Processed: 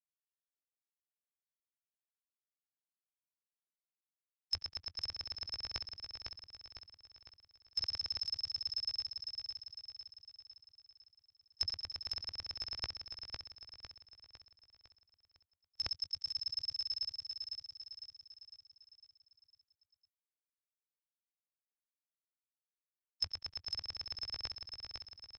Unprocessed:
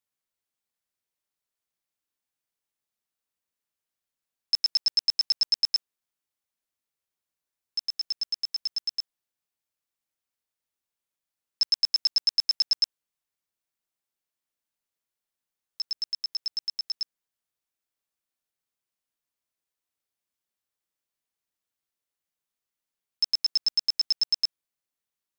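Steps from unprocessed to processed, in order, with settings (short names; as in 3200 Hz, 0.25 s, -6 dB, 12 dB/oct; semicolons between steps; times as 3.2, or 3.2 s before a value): per-bin expansion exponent 3; transient shaper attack +8 dB, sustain -9 dB; resonant low shelf 130 Hz +12.5 dB, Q 1.5; reverse; compressor 16:1, threshold -29 dBFS, peak gain reduction 16.5 dB; reverse; treble ducked by the level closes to 2300 Hz, closed at -31.5 dBFS; on a send: feedback echo 0.504 s, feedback 49%, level -5 dB; on the sum: sustainer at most 70 dB/s; gain +4 dB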